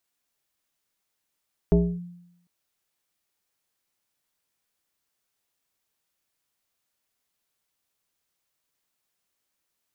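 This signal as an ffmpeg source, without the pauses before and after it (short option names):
-f lavfi -i "aevalsrc='0.237*pow(10,-3*t/0.82)*sin(2*PI*175*t+1.2*clip(1-t/0.28,0,1)*sin(2*PI*1.34*175*t))':d=0.75:s=44100"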